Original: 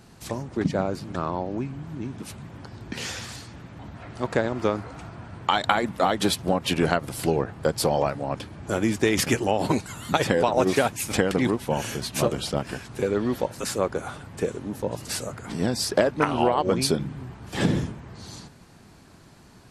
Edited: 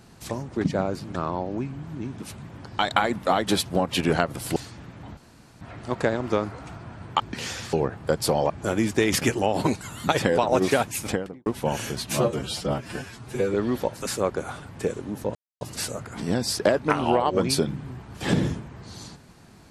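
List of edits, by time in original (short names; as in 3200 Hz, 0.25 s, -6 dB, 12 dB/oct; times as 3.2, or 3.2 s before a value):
2.79–3.32 swap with 5.52–7.29
3.93 insert room tone 0.44 s
8.06–8.55 cut
10.99–11.51 studio fade out
12.18–13.12 stretch 1.5×
14.93 insert silence 0.26 s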